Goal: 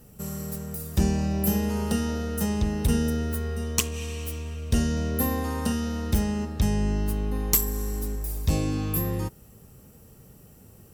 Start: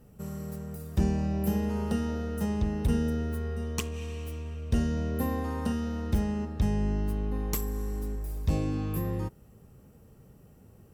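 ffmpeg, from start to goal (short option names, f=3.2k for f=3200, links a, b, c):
-af "highshelf=f=3.3k:g=11.5,volume=3dB"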